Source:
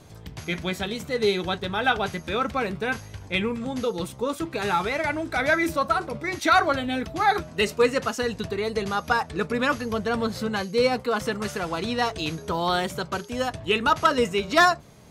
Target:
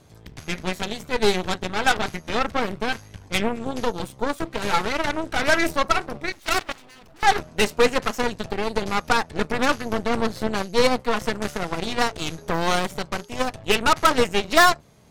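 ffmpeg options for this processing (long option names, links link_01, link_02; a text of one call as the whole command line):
ffmpeg -i in.wav -filter_complex "[0:a]asettb=1/sr,asplit=3[link_01][link_02][link_03];[link_01]atrim=end=6.324[link_04];[link_02]atrim=start=6.32:end=7.23,asetpts=PTS-STARTPTS,afade=type=in:duration=0.004:curve=qsin,afade=type=out:start_time=0.906:duration=0.004:curve=qsin,aeval=exprs='max(val(0),0)':channel_layout=same[link_05];[link_03]atrim=start=7.226[link_06];[link_04][link_05]acrossfade=duration=0.004:curve1=hsin:curve2=qsin[link_07];[link_07][link_06]acrossfade=duration=0.004:curve1=qsin:curve2=hsin,aeval=exprs='0.398*(cos(1*acos(clip(val(0)/0.398,-1,1)))-cos(1*PI/2))+0.0398*(cos(3*acos(clip(val(0)/0.398,-1,1)))-cos(3*PI/2))+0.0447*(cos(5*acos(clip(val(0)/0.398,-1,1)))-cos(5*PI/2))+0.0447*(cos(7*acos(clip(val(0)/0.398,-1,1)))-cos(7*PI/2))+0.0562*(cos(8*acos(clip(val(0)/0.398,-1,1)))-cos(8*PI/2))':channel_layout=same,volume=2.5dB" out.wav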